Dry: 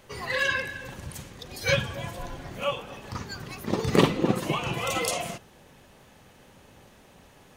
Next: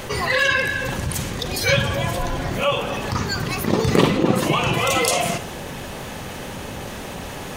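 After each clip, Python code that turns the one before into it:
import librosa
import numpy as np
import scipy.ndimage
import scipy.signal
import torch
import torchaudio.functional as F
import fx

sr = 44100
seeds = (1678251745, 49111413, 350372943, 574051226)

y = fx.rev_schroeder(x, sr, rt60_s=0.48, comb_ms=31, drr_db=17.0)
y = fx.env_flatten(y, sr, amount_pct=50)
y = F.gain(torch.from_numpy(y), 2.5).numpy()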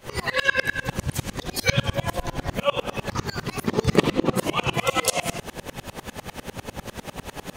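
y = fx.tremolo_decay(x, sr, direction='swelling', hz=10.0, depth_db=28)
y = F.gain(torch.from_numpy(y), 3.5).numpy()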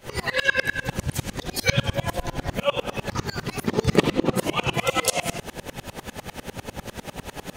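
y = fx.notch(x, sr, hz=1100.0, q=11.0)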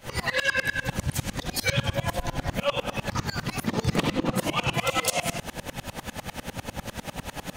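y = fx.peak_eq(x, sr, hz=400.0, db=-9.0, octaves=0.37)
y = 10.0 ** (-17.5 / 20.0) * np.tanh(y / 10.0 ** (-17.5 / 20.0))
y = F.gain(torch.from_numpy(y), 1.0).numpy()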